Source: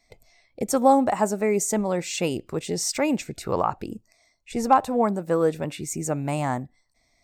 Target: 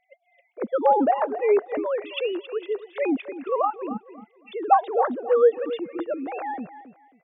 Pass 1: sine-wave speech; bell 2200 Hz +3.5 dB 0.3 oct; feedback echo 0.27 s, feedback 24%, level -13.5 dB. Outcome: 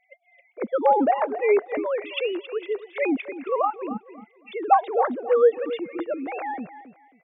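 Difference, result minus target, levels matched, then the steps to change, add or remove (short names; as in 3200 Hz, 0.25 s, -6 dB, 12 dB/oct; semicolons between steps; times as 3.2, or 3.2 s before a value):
2000 Hz band +3.5 dB
change: bell 2200 Hz -5.5 dB 0.3 oct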